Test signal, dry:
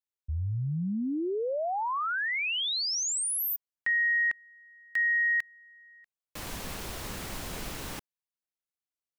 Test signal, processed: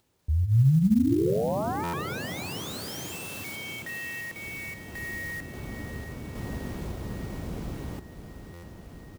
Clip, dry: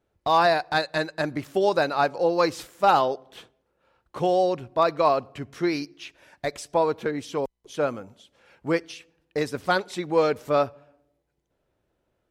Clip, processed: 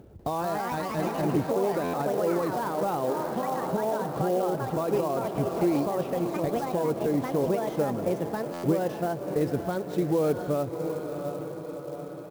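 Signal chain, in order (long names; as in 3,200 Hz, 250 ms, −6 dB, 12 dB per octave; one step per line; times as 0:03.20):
high-pass filter 44 Hz
on a send: feedback delay with all-pass diffusion 688 ms, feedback 61%, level −11.5 dB
on the sum: upward compression, threshold −39 dBFS
single-tap delay 194 ms −22.5 dB
delay with pitch and tempo change per echo 194 ms, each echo +3 semitones, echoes 3
in parallel at +3 dB: downward compressor, threshold −23 dBFS
on the sum: brickwall limiter −10.5 dBFS
drawn EQ curve 150 Hz 0 dB, 350 Hz −3 dB, 1,900 Hz −18 dB
buffer that repeats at 0:01.83/0:08.53, samples 512, times 8
converter with an unsteady clock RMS 0.023 ms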